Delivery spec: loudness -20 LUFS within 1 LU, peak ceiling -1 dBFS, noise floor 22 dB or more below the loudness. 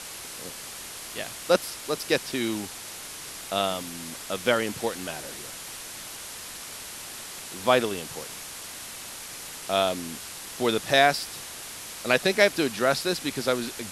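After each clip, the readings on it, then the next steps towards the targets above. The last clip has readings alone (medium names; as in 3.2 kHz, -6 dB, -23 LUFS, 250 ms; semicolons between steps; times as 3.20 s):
noise floor -40 dBFS; noise floor target -50 dBFS; loudness -28.0 LUFS; peak level -5.0 dBFS; loudness target -20.0 LUFS
-> noise reduction 10 dB, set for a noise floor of -40 dBFS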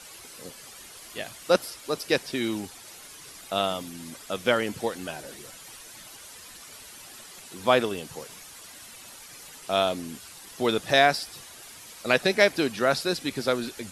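noise floor -46 dBFS; noise floor target -48 dBFS
-> noise reduction 6 dB, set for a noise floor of -46 dBFS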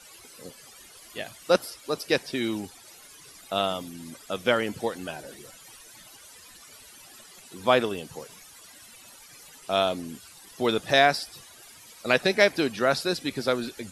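noise floor -50 dBFS; loudness -26.0 LUFS; peak level -5.0 dBFS; loudness target -20.0 LUFS
-> trim +6 dB; peak limiter -1 dBFS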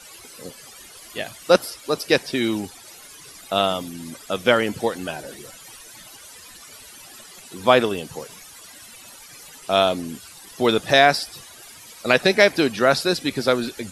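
loudness -20.5 LUFS; peak level -1.0 dBFS; noise floor -44 dBFS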